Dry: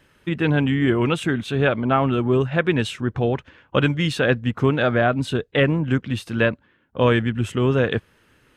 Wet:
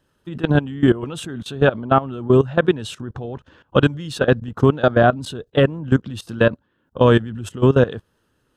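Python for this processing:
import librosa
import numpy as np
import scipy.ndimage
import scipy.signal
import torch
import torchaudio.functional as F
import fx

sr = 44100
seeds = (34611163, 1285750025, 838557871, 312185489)

y = fx.level_steps(x, sr, step_db=18)
y = fx.peak_eq(y, sr, hz=2200.0, db=-14.0, octaves=0.55)
y = y * librosa.db_to_amplitude(7.0)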